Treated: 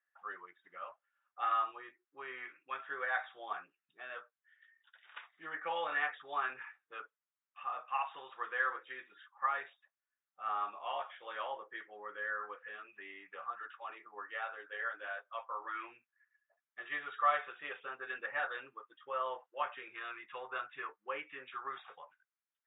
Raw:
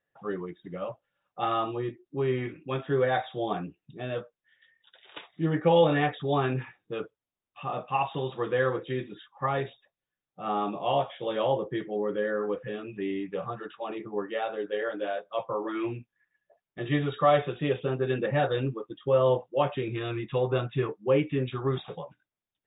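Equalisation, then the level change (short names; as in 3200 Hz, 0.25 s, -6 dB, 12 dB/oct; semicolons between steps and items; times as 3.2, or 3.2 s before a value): ladder band-pass 1700 Hz, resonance 40%; air absorption 220 m; +8.5 dB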